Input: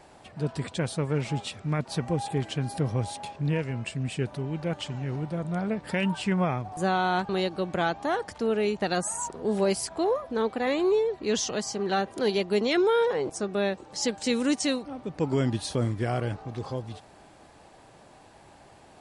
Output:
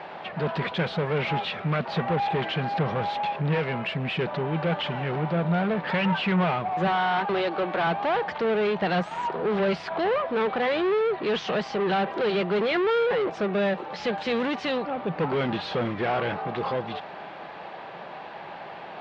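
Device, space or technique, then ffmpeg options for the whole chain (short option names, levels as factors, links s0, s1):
overdrive pedal into a guitar cabinet: -filter_complex "[0:a]asettb=1/sr,asplit=3[s0][s1][s2];[s0]atrim=end=6.874[s3];[s1]atrim=start=6.87:end=7.87,asetpts=PTS-STARTPTS,afade=t=in:d=0.004:c=qsin,afade=t=out:st=0.996:d=0.004:c=qsin,highpass=f=240:w=0.5412,highpass=f=240:w=1.3066[s4];[s2]atrim=start=7.866[s5];[s3][s4]acrossfade=d=0.004:c1=hsin:c2=qsin[s6];[s6][s5]acrossfade=d=0.004:c1=qsin:c2=hsin,asplit=2[s7][s8];[s8]highpass=f=720:p=1,volume=25.1,asoftclip=type=tanh:threshold=0.224[s9];[s7][s9]amix=inputs=2:normalize=0,lowpass=f=3000:p=1,volume=0.501,highpass=76,equalizer=f=110:t=q:w=4:g=-6,equalizer=f=170:t=q:w=4:g=7,equalizer=f=280:t=q:w=4:g=-6,lowpass=f=3600:w=0.5412,lowpass=f=3600:w=1.3066,volume=0.631"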